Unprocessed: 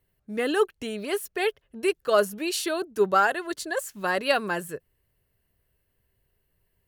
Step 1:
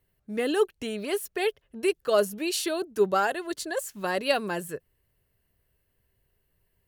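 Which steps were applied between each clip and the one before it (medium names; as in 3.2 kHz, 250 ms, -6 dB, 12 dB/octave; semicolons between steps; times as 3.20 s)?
dynamic bell 1.4 kHz, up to -6 dB, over -38 dBFS, Q 1.1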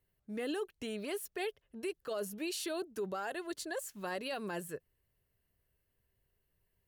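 peak limiter -22.5 dBFS, peak gain reduction 11.5 dB; trim -7 dB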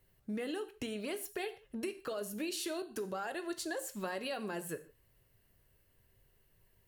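compression 6:1, threshold -46 dBFS, peak gain reduction 12.5 dB; gated-style reverb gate 180 ms falling, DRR 9 dB; trim +9 dB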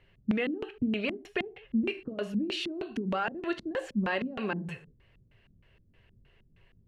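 spectral replace 4.58–4.88 s, 250–1800 Hz both; LFO low-pass square 3.2 Hz 220–2700 Hz; trim +7.5 dB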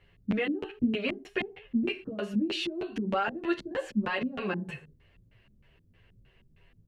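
endless flanger 9.7 ms +1.2 Hz; trim +4 dB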